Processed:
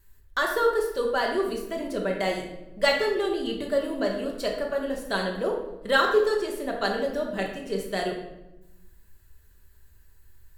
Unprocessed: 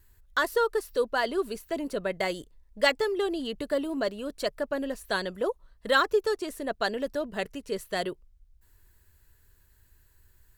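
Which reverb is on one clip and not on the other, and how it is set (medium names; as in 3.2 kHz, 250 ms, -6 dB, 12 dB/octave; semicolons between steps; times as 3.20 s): simulated room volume 360 m³, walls mixed, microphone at 1.2 m; trim -1 dB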